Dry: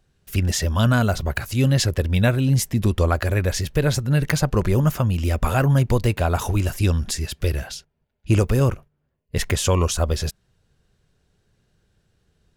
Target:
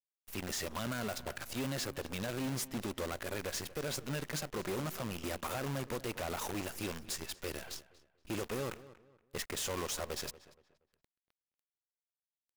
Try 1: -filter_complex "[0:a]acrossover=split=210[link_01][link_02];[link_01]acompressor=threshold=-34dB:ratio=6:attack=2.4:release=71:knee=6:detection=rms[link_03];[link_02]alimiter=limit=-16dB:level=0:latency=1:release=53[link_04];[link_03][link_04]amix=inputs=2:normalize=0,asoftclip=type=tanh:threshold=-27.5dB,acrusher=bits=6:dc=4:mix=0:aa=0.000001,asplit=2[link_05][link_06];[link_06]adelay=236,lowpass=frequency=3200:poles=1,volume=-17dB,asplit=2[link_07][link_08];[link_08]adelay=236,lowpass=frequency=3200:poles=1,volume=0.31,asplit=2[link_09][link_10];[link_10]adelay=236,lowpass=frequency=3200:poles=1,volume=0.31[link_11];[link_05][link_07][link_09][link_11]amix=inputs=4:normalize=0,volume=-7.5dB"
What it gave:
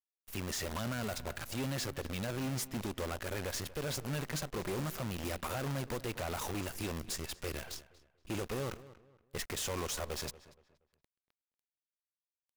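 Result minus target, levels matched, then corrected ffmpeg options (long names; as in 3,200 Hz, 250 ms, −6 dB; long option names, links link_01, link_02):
downward compressor: peak gain reduction −7.5 dB
-filter_complex "[0:a]acrossover=split=210[link_01][link_02];[link_01]acompressor=threshold=-43dB:ratio=6:attack=2.4:release=71:knee=6:detection=rms[link_03];[link_02]alimiter=limit=-16dB:level=0:latency=1:release=53[link_04];[link_03][link_04]amix=inputs=2:normalize=0,asoftclip=type=tanh:threshold=-27.5dB,acrusher=bits=6:dc=4:mix=0:aa=0.000001,asplit=2[link_05][link_06];[link_06]adelay=236,lowpass=frequency=3200:poles=1,volume=-17dB,asplit=2[link_07][link_08];[link_08]adelay=236,lowpass=frequency=3200:poles=1,volume=0.31,asplit=2[link_09][link_10];[link_10]adelay=236,lowpass=frequency=3200:poles=1,volume=0.31[link_11];[link_05][link_07][link_09][link_11]amix=inputs=4:normalize=0,volume=-7.5dB"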